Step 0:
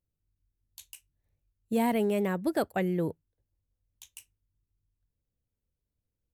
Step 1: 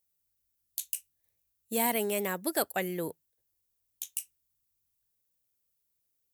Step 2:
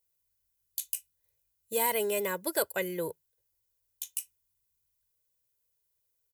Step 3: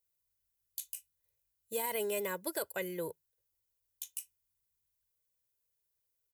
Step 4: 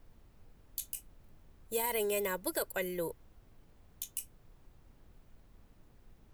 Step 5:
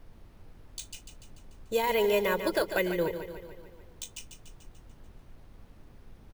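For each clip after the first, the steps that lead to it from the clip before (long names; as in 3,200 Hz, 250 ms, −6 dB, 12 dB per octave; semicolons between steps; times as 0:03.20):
RIAA equalisation recording
comb filter 2 ms, depth 74%; level −1.5 dB
brickwall limiter −19.5 dBFS, peak gain reduction 6.5 dB; level −4.5 dB
background noise brown −59 dBFS; level +2 dB
on a send: repeating echo 146 ms, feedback 58%, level −9.5 dB; on the sum: bad sample-rate conversion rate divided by 3×, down filtered, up hold; level +7.5 dB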